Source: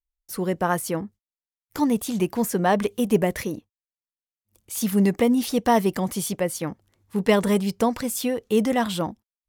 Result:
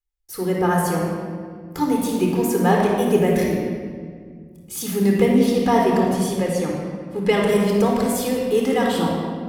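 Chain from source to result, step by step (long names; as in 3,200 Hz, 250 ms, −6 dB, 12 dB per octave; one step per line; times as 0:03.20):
0:05.25–0:07.49: high-shelf EQ 9,500 Hz −9 dB
rectangular room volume 3,200 cubic metres, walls mixed, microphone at 4 metres
level −2.5 dB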